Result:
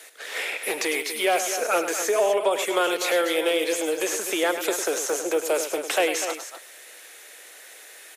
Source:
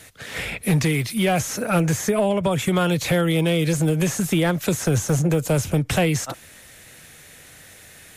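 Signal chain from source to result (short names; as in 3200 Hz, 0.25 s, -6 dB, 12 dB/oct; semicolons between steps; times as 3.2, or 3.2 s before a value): steep high-pass 360 Hz 36 dB/oct; on a send: loudspeakers at several distances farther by 35 m -10 dB, 85 m -10 dB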